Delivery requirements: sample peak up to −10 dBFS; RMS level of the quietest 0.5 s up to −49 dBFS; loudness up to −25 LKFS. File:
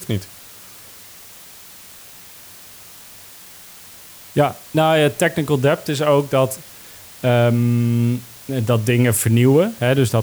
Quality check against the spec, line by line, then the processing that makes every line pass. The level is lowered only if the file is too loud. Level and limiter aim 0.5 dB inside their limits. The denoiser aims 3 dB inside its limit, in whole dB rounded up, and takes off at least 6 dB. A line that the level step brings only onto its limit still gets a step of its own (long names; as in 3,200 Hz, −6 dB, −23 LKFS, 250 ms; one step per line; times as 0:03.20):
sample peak −4.5 dBFS: out of spec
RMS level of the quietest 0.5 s −41 dBFS: out of spec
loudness −17.5 LKFS: out of spec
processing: broadband denoise 6 dB, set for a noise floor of −41 dBFS
level −8 dB